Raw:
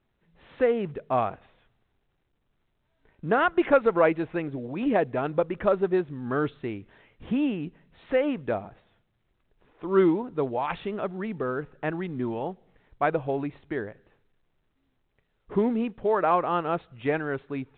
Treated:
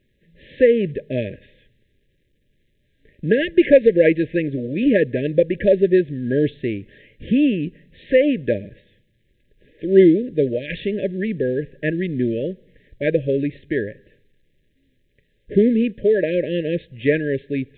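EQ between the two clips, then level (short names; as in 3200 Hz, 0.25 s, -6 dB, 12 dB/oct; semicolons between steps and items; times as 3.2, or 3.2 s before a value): brick-wall FIR band-stop 620–1600 Hz; +9.0 dB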